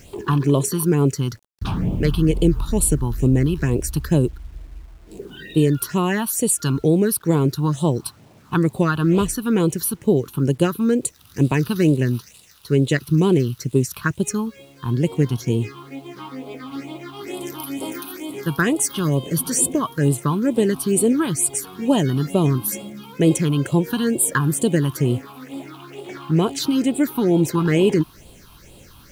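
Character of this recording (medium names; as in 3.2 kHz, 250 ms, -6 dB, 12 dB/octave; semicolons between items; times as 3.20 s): phasing stages 6, 2.2 Hz, lowest notch 500–1700 Hz; a quantiser's noise floor 10-bit, dither none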